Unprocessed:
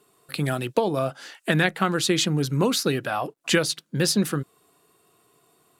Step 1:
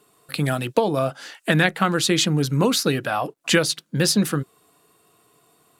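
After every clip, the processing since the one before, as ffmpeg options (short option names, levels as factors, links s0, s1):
-af "bandreject=f=380:w=12,volume=1.41"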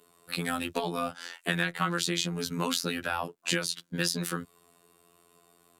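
-filter_complex "[0:a]afftfilt=real='hypot(re,im)*cos(PI*b)':imag='0':win_size=2048:overlap=0.75,acrossover=split=270|920[s0][s1][s2];[s0]acompressor=threshold=0.0178:ratio=4[s3];[s1]acompressor=threshold=0.0126:ratio=4[s4];[s2]acompressor=threshold=0.0501:ratio=4[s5];[s3][s4][s5]amix=inputs=3:normalize=0"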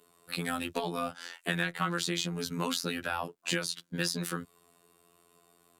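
-af "asoftclip=type=tanh:threshold=0.335,volume=0.794"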